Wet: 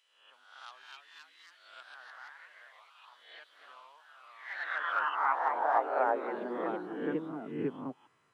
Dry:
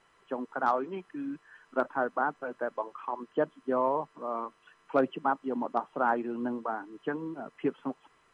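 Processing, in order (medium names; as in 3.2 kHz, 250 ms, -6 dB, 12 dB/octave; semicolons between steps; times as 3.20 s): reverse spectral sustain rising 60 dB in 0.73 s; high-pass sweep 3.1 kHz -> 110 Hz, 4.10–7.95 s; ever faster or slower copies 334 ms, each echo +2 st, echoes 3; trim -8 dB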